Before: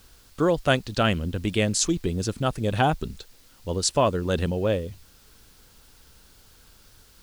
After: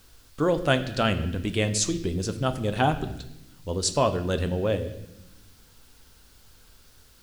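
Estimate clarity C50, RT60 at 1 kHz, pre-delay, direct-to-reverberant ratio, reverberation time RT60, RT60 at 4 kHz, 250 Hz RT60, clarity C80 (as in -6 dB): 12.0 dB, 0.80 s, 4 ms, 8.0 dB, 0.90 s, 0.80 s, 1.5 s, 14.0 dB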